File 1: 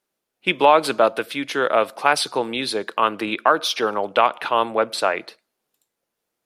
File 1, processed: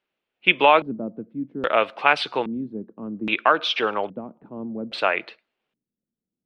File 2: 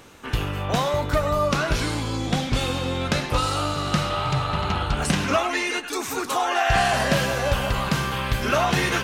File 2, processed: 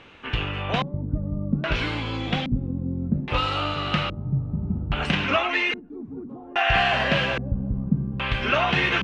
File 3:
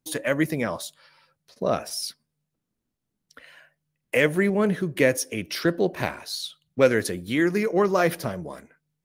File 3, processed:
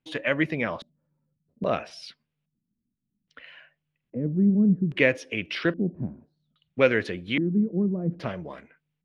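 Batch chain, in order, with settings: LFO low-pass square 0.61 Hz 220–2800 Hz; gain -2.5 dB

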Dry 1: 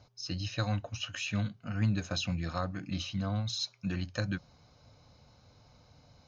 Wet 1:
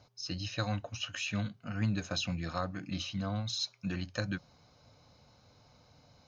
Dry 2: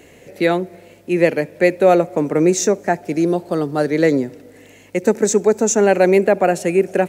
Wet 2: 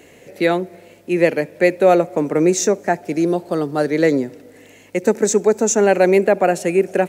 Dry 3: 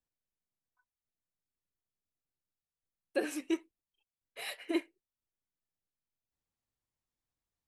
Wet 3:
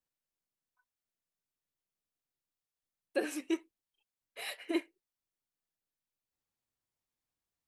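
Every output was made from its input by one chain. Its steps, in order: low shelf 95 Hz -7.5 dB

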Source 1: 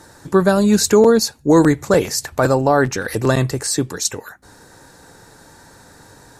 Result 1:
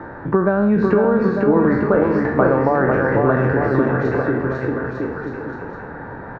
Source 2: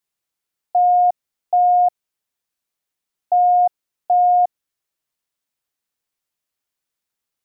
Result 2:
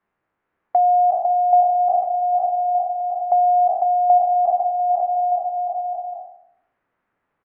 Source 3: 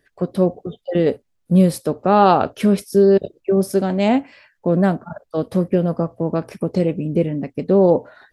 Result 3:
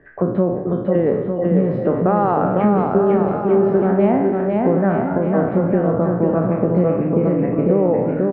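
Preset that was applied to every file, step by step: spectral trails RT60 0.60 s; LPF 1800 Hz 24 dB/oct; notches 50/100/150 Hz; compressor, threshold -15 dBFS; bouncing-ball echo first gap 0.5 s, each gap 0.8×, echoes 5; three-band squash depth 40%; gain +2 dB

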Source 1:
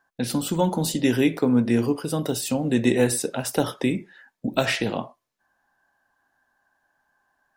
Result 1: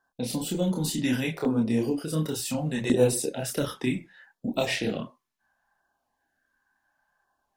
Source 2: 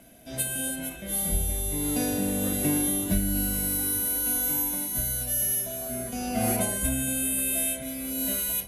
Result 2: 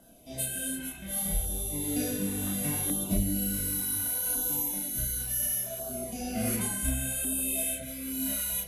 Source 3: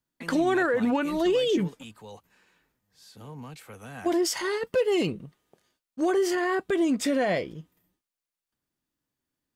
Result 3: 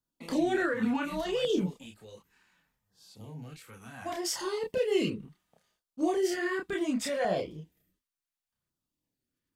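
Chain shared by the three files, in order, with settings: chorus voices 4, 1.2 Hz, delay 29 ms, depth 3.1 ms; LFO notch saw down 0.69 Hz 250–2400 Hz

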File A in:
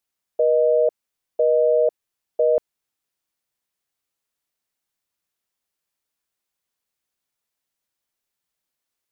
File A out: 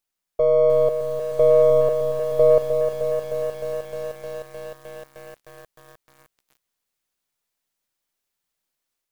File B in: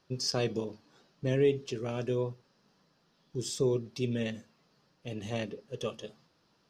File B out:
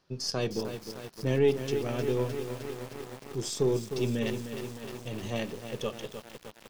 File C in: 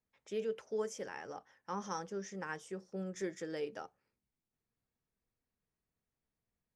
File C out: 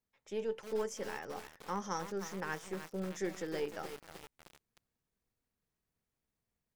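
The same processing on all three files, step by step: half-wave gain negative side -3 dB; AGC gain up to 3 dB; lo-fi delay 0.307 s, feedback 80%, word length 7-bit, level -8 dB

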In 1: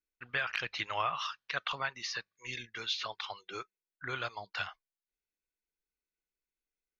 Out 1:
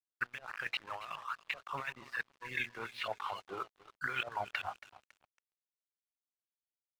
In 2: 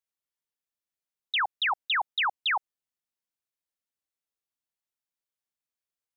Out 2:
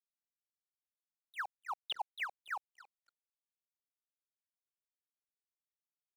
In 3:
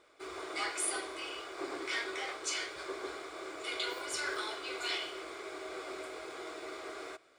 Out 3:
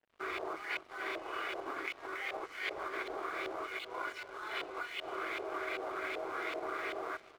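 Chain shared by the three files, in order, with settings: negative-ratio compressor -43 dBFS, ratio -1; LFO low-pass saw up 2.6 Hz 600–2800 Hz; high shelf 2600 Hz +9 dB; notches 60/120/180/240/300/360/420/480 Hz; feedback echo 0.278 s, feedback 44%, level -15 dB; crossover distortion -54.5 dBFS

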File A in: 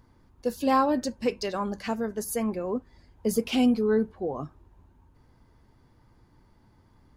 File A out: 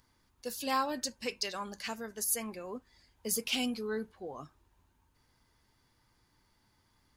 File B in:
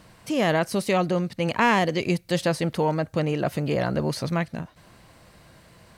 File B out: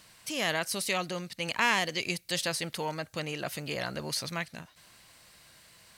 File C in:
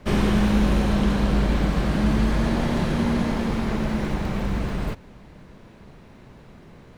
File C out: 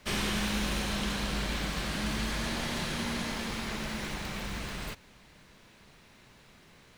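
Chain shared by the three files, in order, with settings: tilt shelf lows -9 dB, about 1400 Hz; gain -5 dB

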